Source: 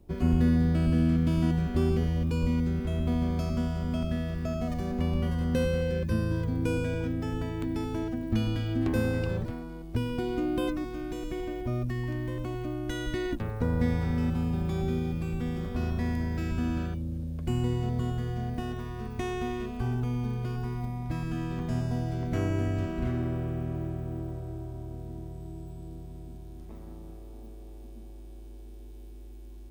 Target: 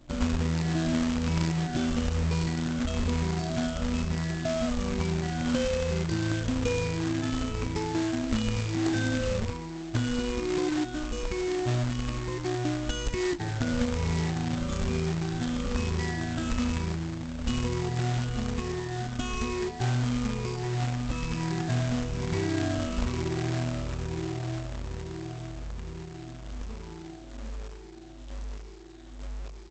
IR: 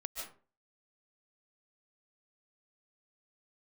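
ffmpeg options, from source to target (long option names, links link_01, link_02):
-af "afftfilt=real='re*pow(10,21/40*sin(2*PI*(0.83*log(max(b,1)*sr/1024/100)/log(2)-(-1.1)*(pts-256)/sr)))':imag='im*pow(10,21/40*sin(2*PI*(0.83*log(max(b,1)*sr/1024/100)/log(2)-(-1.1)*(pts-256)/sr)))':win_size=1024:overlap=0.75,bandreject=frequency=79.44:width_type=h:width=4,bandreject=frequency=158.88:width_type=h:width=4,aresample=16000,acrusher=bits=2:mode=log:mix=0:aa=0.000001,aresample=44100,aeval=exprs='0.376*(cos(1*acos(clip(val(0)/0.376,-1,1)))-cos(1*PI/2))+0.0133*(cos(3*acos(clip(val(0)/0.376,-1,1)))-cos(3*PI/2))':channel_layout=same,acompressor=threshold=-24dB:ratio=4"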